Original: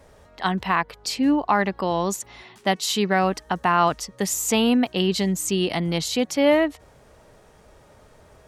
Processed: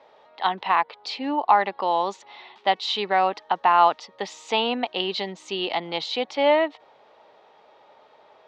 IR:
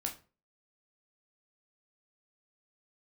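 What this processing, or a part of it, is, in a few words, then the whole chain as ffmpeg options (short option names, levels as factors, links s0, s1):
phone earpiece: -af "highpass=470,equalizer=f=850:t=q:w=4:g=7,equalizer=f=1600:t=q:w=4:g=-5,equalizer=f=3700:t=q:w=4:g=4,lowpass=f=4100:w=0.5412,lowpass=f=4100:w=1.3066"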